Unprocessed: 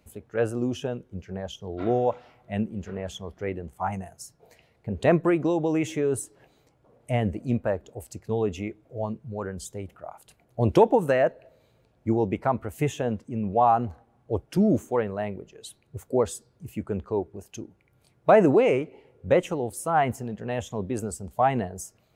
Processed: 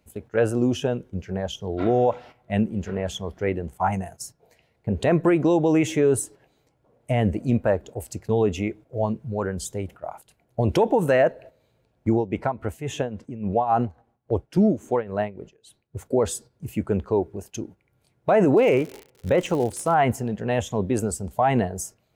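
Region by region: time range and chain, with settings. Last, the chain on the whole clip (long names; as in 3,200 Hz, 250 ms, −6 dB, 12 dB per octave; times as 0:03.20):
0:12.13–0:16.06: high-shelf EQ 11,000 Hz −10 dB + amplitude tremolo 3.6 Hz, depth 82%
0:18.56–0:19.93: low-pass filter 8,900 Hz + surface crackle 130 per second −34 dBFS
whole clip: notch filter 1,200 Hz, Q 16; noise gate −47 dBFS, range −9 dB; brickwall limiter −16.5 dBFS; level +6 dB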